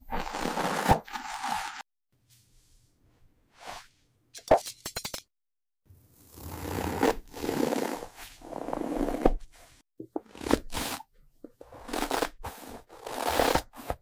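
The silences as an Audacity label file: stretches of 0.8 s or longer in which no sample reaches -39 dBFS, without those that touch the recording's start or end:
1.810000	3.630000	silence
5.190000	6.340000	silence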